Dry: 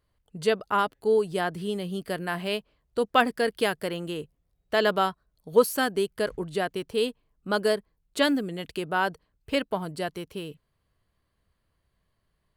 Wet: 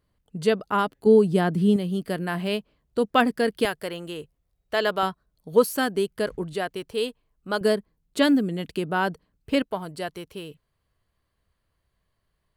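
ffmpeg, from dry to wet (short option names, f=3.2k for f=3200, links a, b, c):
-af "asetnsamples=n=441:p=0,asendcmd='1.06 equalizer g 14.5;1.76 equalizer g 6.5;3.65 equalizer g -4;5.03 equalizer g 3.5;6.53 equalizer g -2.5;7.61 equalizer g 7.5;9.62 equalizer g -2.5',equalizer=f=210:t=o:w=1.6:g=6.5"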